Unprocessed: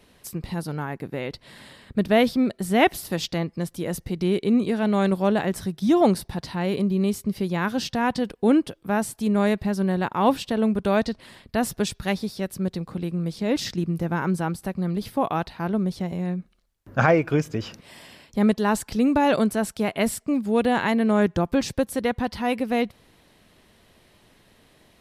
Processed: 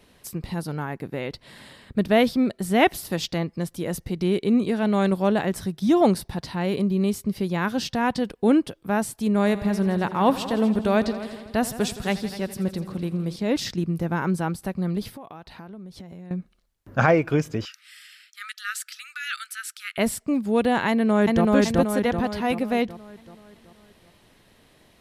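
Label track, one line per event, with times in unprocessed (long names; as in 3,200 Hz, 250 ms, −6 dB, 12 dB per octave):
9.370000	13.360000	echo machine with several playback heads 83 ms, heads all three, feedback 45%, level −17.5 dB
15.110000	16.310000	downward compressor 8 to 1, threshold −37 dBFS
17.650000	19.980000	linear-phase brick-wall high-pass 1,200 Hz
20.890000	21.520000	delay throw 380 ms, feedback 50%, level −0.5 dB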